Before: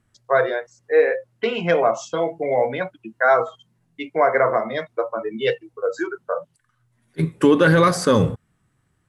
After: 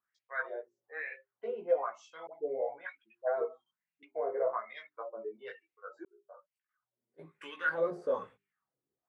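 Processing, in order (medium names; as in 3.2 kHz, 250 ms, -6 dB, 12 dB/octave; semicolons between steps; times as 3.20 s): treble shelf 9.7 kHz +12 dB; hum notches 50/100/150/200/250/300/350/400 Hz; wah-wah 1.1 Hz 390–2500 Hz, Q 4.2; chorus voices 6, 0.61 Hz, delay 17 ms, depth 3.2 ms; 2.27–4.03 s: phase dispersion highs, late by 74 ms, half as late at 890 Hz; 6.05–7.26 s: fade in; trim -5 dB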